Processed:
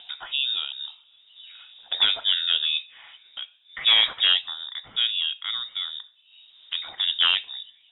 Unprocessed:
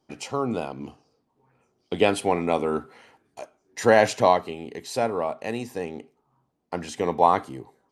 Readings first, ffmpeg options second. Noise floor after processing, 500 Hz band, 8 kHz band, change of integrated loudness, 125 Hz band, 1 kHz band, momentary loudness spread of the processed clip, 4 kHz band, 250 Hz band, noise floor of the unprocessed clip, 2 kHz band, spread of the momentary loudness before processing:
-59 dBFS, -27.5 dB, under -40 dB, +2.0 dB, under -25 dB, -15.5 dB, 19 LU, +19.5 dB, under -25 dB, -73 dBFS, +1.5 dB, 21 LU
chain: -af "aeval=exprs='0.299*(abs(mod(val(0)/0.299+3,4)-2)-1)':c=same,acompressor=mode=upward:threshold=0.0355:ratio=2.5,lowpass=f=3300:t=q:w=0.5098,lowpass=f=3300:t=q:w=0.6013,lowpass=f=3300:t=q:w=0.9,lowpass=f=3300:t=q:w=2.563,afreqshift=-3900"

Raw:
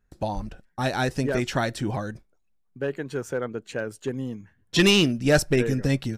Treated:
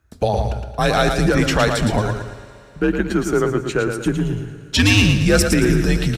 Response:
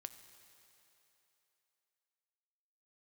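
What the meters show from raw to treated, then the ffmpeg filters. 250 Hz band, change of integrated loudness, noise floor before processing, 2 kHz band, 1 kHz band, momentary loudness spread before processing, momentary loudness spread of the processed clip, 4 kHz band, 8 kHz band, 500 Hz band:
+7.0 dB, +7.0 dB, -67 dBFS, +7.0 dB, +8.5 dB, 14 LU, 9 LU, +4.5 dB, +8.0 dB, +6.0 dB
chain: -filter_complex "[0:a]alimiter=limit=0.141:level=0:latency=1:release=15,afreqshift=-96,highpass=41,aecho=1:1:113|226|339|452|565:0.501|0.195|0.0762|0.0297|0.0116,asplit=2[s0][s1];[1:a]atrim=start_sample=2205[s2];[s1][s2]afir=irnorm=-1:irlink=0,volume=2[s3];[s0][s3]amix=inputs=2:normalize=0,volume=1.58"

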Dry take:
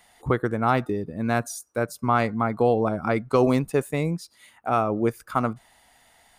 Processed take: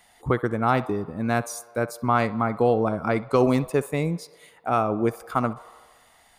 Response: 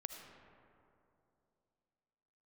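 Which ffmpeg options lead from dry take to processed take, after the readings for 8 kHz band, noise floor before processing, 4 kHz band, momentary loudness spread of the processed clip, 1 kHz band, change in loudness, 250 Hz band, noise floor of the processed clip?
0.0 dB, -59 dBFS, 0.0 dB, 8 LU, 0.0 dB, 0.0 dB, 0.0 dB, -58 dBFS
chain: -filter_complex "[0:a]asplit=2[s0][s1];[s1]equalizer=f=125:t=o:w=1:g=-11,equalizer=f=250:t=o:w=1:g=-11,equalizer=f=500:t=o:w=1:g=8,equalizer=f=1000:t=o:w=1:g=11,equalizer=f=4000:t=o:w=1:g=8,equalizer=f=8000:t=o:w=1:g=-7[s2];[1:a]atrim=start_sample=2205,asetrate=79380,aresample=44100,adelay=64[s3];[s2][s3]afir=irnorm=-1:irlink=0,volume=0.178[s4];[s0][s4]amix=inputs=2:normalize=0"

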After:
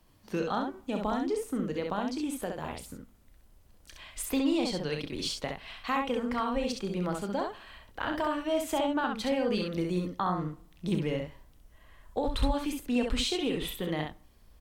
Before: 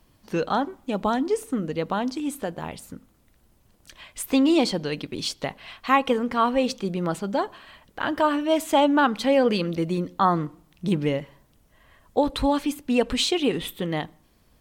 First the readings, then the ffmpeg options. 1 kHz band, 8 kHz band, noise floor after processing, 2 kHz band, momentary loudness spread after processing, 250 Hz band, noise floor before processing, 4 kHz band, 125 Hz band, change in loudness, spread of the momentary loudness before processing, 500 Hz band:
-9.0 dB, -5.0 dB, -60 dBFS, -7.5 dB, 10 LU, -7.0 dB, -61 dBFS, -6.0 dB, -5.0 dB, -7.5 dB, 13 LU, -7.5 dB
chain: -filter_complex "[0:a]asubboost=boost=3:cutoff=80,acrossover=split=190[s0][s1];[s1]acompressor=threshold=0.0501:ratio=2.5[s2];[s0][s2]amix=inputs=2:normalize=0,aecho=1:1:33|66:0.299|0.631,volume=0.596"

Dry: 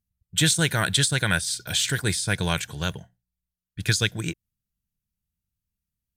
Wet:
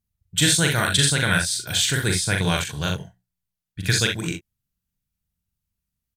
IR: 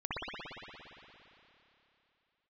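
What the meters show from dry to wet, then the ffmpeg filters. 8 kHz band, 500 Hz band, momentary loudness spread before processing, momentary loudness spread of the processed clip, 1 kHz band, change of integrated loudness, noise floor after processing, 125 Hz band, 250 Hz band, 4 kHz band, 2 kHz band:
+3.0 dB, +3.0 dB, 11 LU, 11 LU, +3.0 dB, +3.0 dB, -84 dBFS, +2.5 dB, +3.0 dB, +3.0 dB, +3.0 dB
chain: -af "aecho=1:1:41|63|74:0.668|0.398|0.211,volume=1.12"

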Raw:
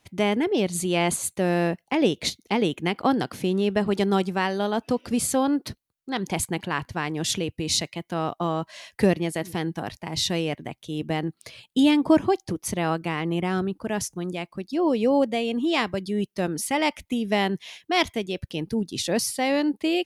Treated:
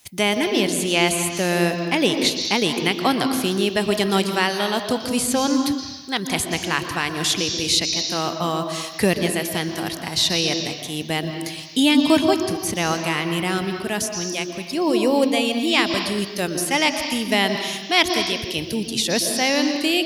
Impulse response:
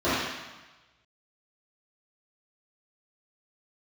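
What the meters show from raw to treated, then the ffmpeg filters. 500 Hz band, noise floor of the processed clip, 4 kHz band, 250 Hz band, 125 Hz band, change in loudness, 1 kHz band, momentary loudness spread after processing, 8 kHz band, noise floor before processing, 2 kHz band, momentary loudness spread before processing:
+2.5 dB, -34 dBFS, +9.5 dB, +2.5 dB, +1.0 dB, +4.5 dB, +3.5 dB, 7 LU, +6.0 dB, -73 dBFS, +7.5 dB, 9 LU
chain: -filter_complex "[0:a]crystalizer=i=6.5:c=0,asplit=2[s0][s1];[s1]lowpass=f=5500:t=q:w=4.5[s2];[1:a]atrim=start_sample=2205,adelay=117[s3];[s2][s3]afir=irnorm=-1:irlink=0,volume=0.0596[s4];[s0][s4]amix=inputs=2:normalize=0,acrossover=split=3700[s5][s6];[s6]acompressor=threshold=0.0562:ratio=4:attack=1:release=60[s7];[s5][s7]amix=inputs=2:normalize=0"

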